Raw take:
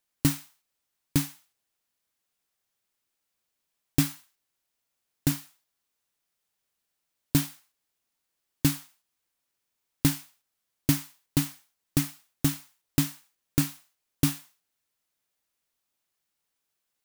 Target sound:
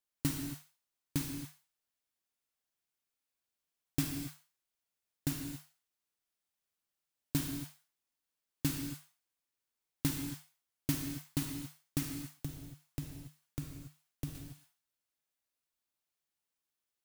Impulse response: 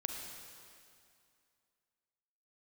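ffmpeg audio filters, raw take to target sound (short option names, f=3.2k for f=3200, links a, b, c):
-filter_complex "[0:a]asettb=1/sr,asplit=3[a][b][c];[a]atrim=end=12.104[d];[b]atrim=start=12.1:end=14.35,asetpts=PTS-STARTPTS,afade=t=in:d=0.004:c=qsin,afade=t=out:st=2.246:d=0.004:c=qsin,acrossover=split=150[e][f];[f]acompressor=threshold=-36dB:ratio=5[g];[e][g]amix=inputs=2:normalize=0[h];[c]atrim=start=14.346[i];[d][h]acrossfade=d=0.004:c1=hsin:c2=qsin[j];[j][i]acrossfade=d=0.004:c1=qsin:c2=hsin[k];[1:a]atrim=start_sample=2205,afade=t=out:st=0.34:d=0.01,atrim=end_sample=15435[l];[k][l]afir=irnorm=-1:irlink=0,volume=-8.5dB"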